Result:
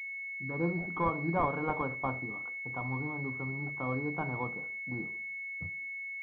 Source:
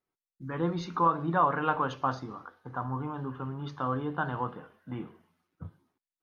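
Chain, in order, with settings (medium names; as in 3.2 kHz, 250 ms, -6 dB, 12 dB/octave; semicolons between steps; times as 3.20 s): class-D stage that switches slowly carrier 2.2 kHz; trim -2 dB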